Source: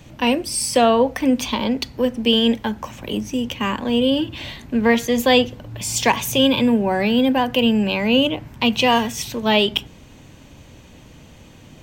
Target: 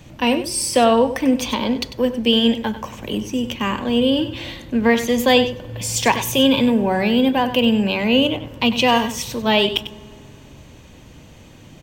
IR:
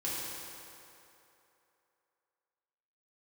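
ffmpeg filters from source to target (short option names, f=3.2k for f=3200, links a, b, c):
-filter_complex "[0:a]aecho=1:1:97:0.251,asplit=2[a][b];[1:a]atrim=start_sample=2205,asetrate=48510,aresample=44100,lowshelf=f=480:g=11.5[c];[b][c]afir=irnorm=-1:irlink=0,volume=-27dB[d];[a][d]amix=inputs=2:normalize=0"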